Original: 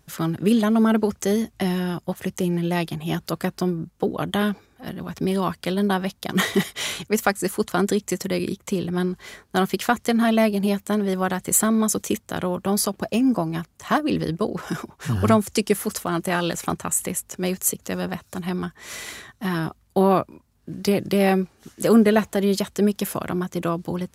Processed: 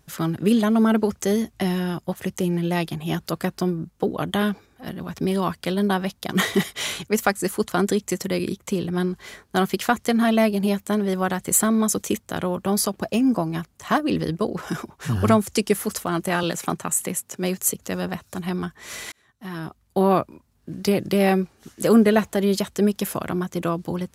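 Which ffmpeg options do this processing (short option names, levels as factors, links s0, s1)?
-filter_complex "[0:a]asettb=1/sr,asplit=3[s0][s1][s2];[s0]atrim=end=16.434[s3];[s1]atrim=start=16.43:end=17.61,asetpts=PTS-STARTPTS,afade=t=in:d=0.004:c=qsin,afade=t=out:st=1.176:d=0.004:c=qsin,highpass=f=110:w=0.5412,highpass=f=110:w=1.3066[s4];[s2]atrim=start=17.606[s5];[s3][s4]acrossfade=d=0.004:c1=hsin:c2=qsin[s6];[s6][s5]acrossfade=d=0.004:c1=qsin:c2=hsin,asplit=2[s7][s8];[s7]atrim=end=19.12,asetpts=PTS-STARTPTS,afade=t=out:st=19.116:d=0.004:c=hsin[s9];[s8]atrim=start=19.12,asetpts=PTS-STARTPTS,afade=t=in:d=1.03[s10];[s9][s10]concat=n=2:v=0:a=1"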